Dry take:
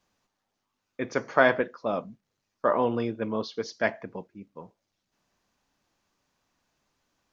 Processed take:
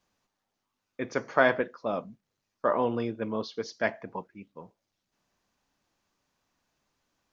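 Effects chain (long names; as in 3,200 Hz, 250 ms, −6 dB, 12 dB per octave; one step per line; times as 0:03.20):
0:04.06–0:04.51: parametric band 640 Hz → 3,800 Hz +13.5 dB 0.48 octaves
level −2 dB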